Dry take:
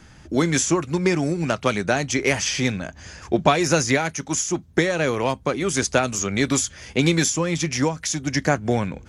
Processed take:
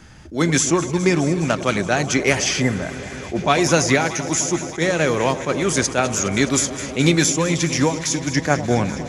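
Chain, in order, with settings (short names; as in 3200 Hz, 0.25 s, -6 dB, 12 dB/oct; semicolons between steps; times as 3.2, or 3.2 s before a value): echo with dull and thin repeats by turns 0.104 s, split 970 Hz, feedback 90%, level -13.5 dB; spectral repair 2.64–3.4, 2100–7000 Hz after; attack slew limiter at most 230 dB/s; gain +3 dB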